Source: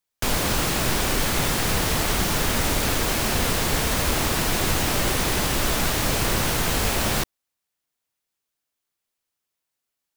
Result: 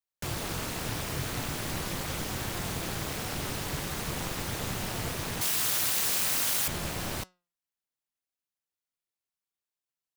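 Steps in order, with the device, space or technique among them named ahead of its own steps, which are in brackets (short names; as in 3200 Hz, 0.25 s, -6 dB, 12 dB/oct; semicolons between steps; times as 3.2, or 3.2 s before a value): alien voice (ring modulator 110 Hz; flange 0.42 Hz, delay 5.2 ms, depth 2 ms, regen +89%); 5.41–6.68 tilt +3.5 dB/oct; gain -4 dB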